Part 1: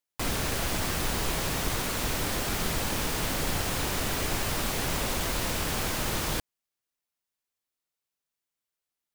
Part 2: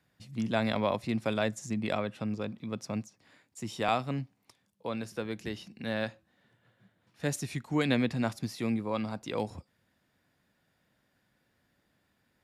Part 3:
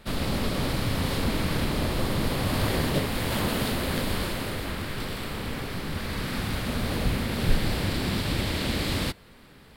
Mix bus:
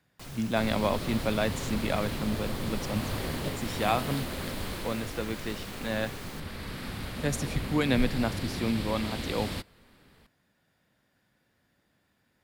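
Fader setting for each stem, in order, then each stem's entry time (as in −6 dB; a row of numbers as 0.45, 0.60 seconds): −16.0, +1.5, −7.5 decibels; 0.00, 0.00, 0.50 seconds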